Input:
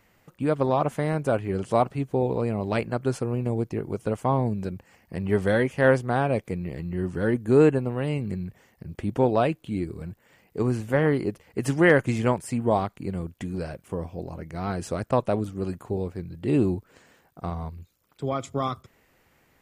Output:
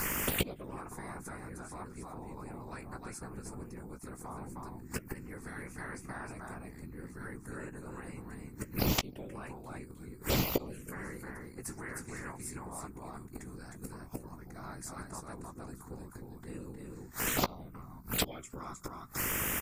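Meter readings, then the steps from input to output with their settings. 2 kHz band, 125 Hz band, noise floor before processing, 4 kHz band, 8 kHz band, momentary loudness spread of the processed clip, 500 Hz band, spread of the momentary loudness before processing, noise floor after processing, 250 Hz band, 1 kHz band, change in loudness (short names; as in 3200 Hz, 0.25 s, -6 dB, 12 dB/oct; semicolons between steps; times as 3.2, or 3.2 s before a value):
-10.5 dB, -15.0 dB, -64 dBFS, +2.0 dB, +5.5 dB, 15 LU, -19.0 dB, 14 LU, -51 dBFS, -15.0 dB, -13.5 dB, -13.5 dB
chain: high shelf 5300 Hz +11.5 dB; in parallel at -1 dB: compressor 12:1, threshold -29 dBFS, peak gain reduction 17.5 dB; on the sum: limiter -12.5 dBFS, peak gain reduction 7.5 dB; on a send: echo 0.31 s -3.5 dB; on the sum: buzz 50 Hz, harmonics 30, -53 dBFS -4 dB/oct; flipped gate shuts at -22 dBFS, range -39 dB; envelope phaser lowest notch 470 Hz, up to 1700 Hz, full sweep at -37.5 dBFS; whisperiser; doubler 16 ms -9.5 dB; spectral compressor 2:1; gain +8.5 dB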